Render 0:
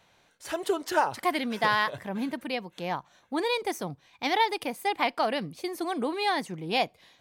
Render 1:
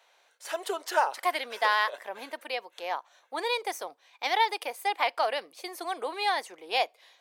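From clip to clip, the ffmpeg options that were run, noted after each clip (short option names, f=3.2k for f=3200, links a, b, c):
-af "highpass=f=470:w=0.5412,highpass=f=470:w=1.3066"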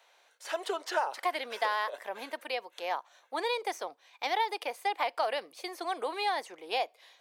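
-filter_complex "[0:a]acrossover=split=890|6500[a][b][c];[a]acompressor=threshold=-29dB:ratio=4[d];[b]acompressor=threshold=-33dB:ratio=4[e];[c]acompressor=threshold=-55dB:ratio=4[f];[d][e][f]amix=inputs=3:normalize=0"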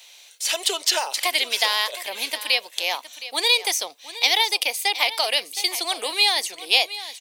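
-af "aexciter=amount=8.1:drive=3.1:freq=2.2k,aecho=1:1:716:0.188,volume=3dB"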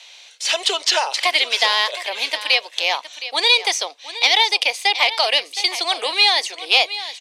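-af "acontrast=84,highpass=410,lowpass=5.4k,volume=-1dB"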